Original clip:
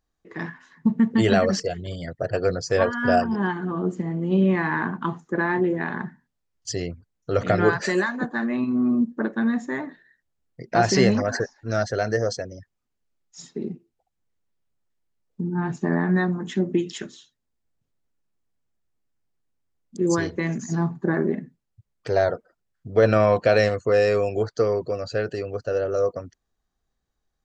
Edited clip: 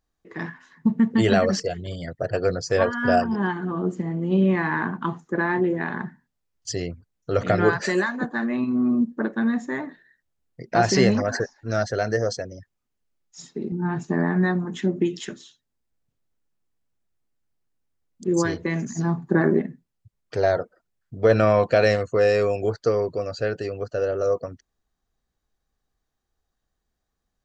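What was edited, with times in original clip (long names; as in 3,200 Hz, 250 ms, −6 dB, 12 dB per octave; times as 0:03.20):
0:13.72–0:15.45: remove
0:21.00–0:21.34: clip gain +3.5 dB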